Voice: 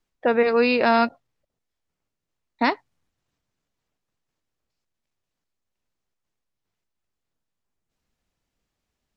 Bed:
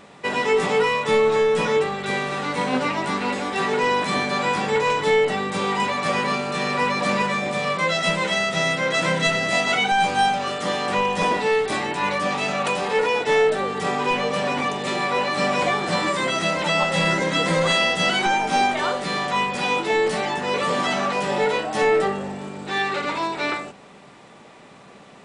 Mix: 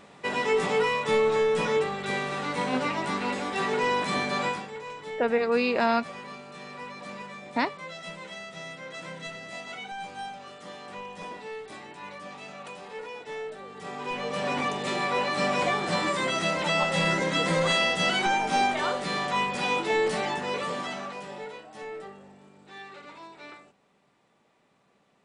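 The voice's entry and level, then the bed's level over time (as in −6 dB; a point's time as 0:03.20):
4.95 s, −5.5 dB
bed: 0:04.46 −5 dB
0:04.71 −18.5 dB
0:13.63 −18.5 dB
0:14.53 −4.5 dB
0:20.31 −4.5 dB
0:21.63 −20.5 dB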